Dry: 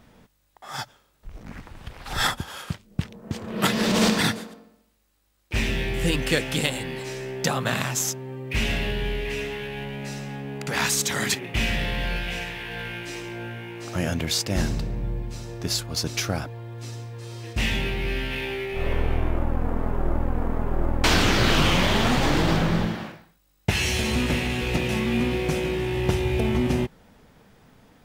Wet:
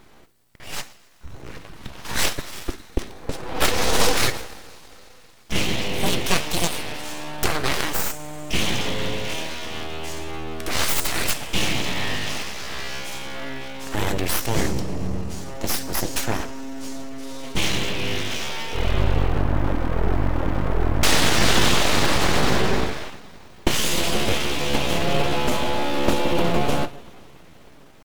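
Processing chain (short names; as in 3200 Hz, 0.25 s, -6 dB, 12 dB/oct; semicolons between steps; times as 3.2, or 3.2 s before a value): two-slope reverb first 0.46 s, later 4.5 s, from -18 dB, DRR 10 dB; pitch shift +2.5 st; full-wave rectifier; gain +4.5 dB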